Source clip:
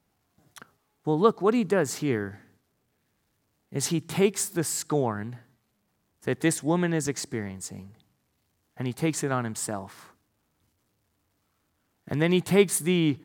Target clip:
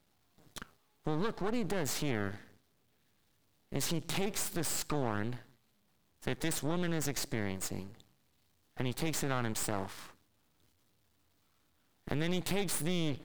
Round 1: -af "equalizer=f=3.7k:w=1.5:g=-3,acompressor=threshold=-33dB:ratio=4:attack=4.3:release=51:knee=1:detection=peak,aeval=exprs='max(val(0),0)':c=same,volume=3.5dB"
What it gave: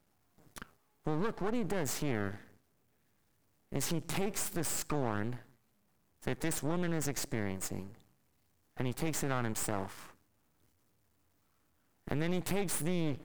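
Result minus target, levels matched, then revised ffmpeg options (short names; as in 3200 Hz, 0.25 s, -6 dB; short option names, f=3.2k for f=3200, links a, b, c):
4000 Hz band -4.0 dB
-af "equalizer=f=3.7k:w=1.5:g=5.5,acompressor=threshold=-33dB:ratio=4:attack=4.3:release=51:knee=1:detection=peak,aeval=exprs='max(val(0),0)':c=same,volume=3.5dB"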